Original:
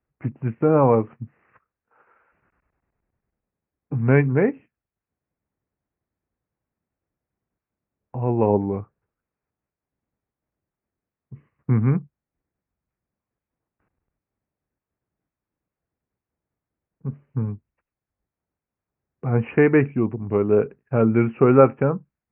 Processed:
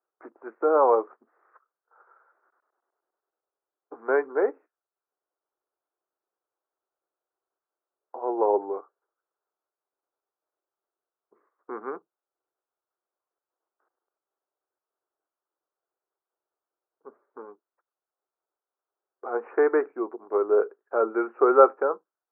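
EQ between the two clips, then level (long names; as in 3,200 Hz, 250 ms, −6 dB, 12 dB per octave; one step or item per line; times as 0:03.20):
elliptic band-pass filter 360–1,400 Hz, stop band 50 dB
spectral tilt +3 dB per octave
+1.5 dB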